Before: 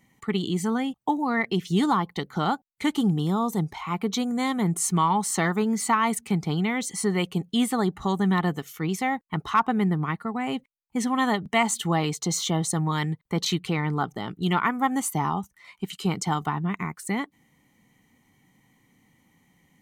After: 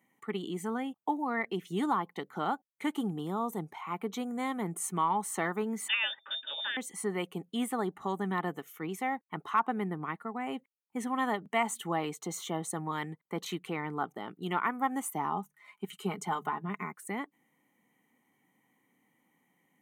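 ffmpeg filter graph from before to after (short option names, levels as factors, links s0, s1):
-filter_complex "[0:a]asettb=1/sr,asplit=3[s0][s1][s2];[s0]atrim=end=5.884[s3];[s1]atrim=start=5.88:end=6.77,asetpts=PTS-STARTPTS,afade=t=in:d=0.004:c=qsin,afade=t=out:st=0.886:d=0.004:c=qsin,highshelf=f=2900:g=7.5,lowpass=f=3200:t=q:w=0.5098,lowpass=f=3200:t=q:w=0.6013,lowpass=f=3200:t=q:w=0.9,lowpass=f=3200:t=q:w=2.563,afreqshift=-3800,asuperstop=centerf=730:order=20:qfactor=6.5[s4];[s2]atrim=start=6.766[s5];[s3][s4]acrossfade=d=0.004:c1=hsin:c2=qsin[s6];[s6][s5]acrossfade=d=0.004:c1=qsin:c2=hsin,asettb=1/sr,asplit=3[s7][s8][s9];[s7]atrim=end=15.314[s10];[s8]atrim=start=15.31:end=16.93,asetpts=PTS-STARTPTS,afade=t=in:d=0.004:c=qsin,afade=t=out:st=1.616:d=0.004:c=qsin,bandreject=f=50:t=h:w=6,bandreject=f=100:t=h:w=6,bandreject=f=150:t=h:w=6,aecho=1:1:4.8:0.56,atrim=end_sample=71442[s11];[s9]atrim=start=16.926[s12];[s10][s11]acrossfade=d=0.004:c1=hsin:c2=qsin[s13];[s13][s12]acrossfade=d=0.004:c1=qsin:c2=hsin,highpass=270,equalizer=f=4800:t=o:w=0.92:g=-14.5,bandreject=f=7500:w=25,volume=0.531"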